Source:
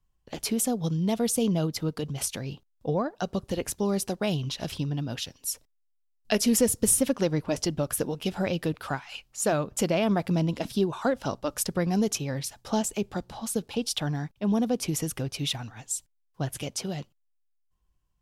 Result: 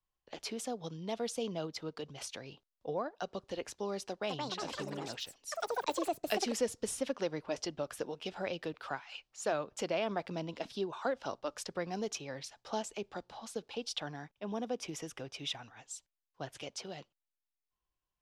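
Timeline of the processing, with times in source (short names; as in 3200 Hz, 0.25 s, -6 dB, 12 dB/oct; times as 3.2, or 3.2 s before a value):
4.05–7.23 echoes that change speed 0.223 s, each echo +6 st, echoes 3
14.16–15.86 notch 4300 Hz, Q 7.9
whole clip: three-band isolator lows -13 dB, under 340 Hz, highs -21 dB, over 6700 Hz; gain -6.5 dB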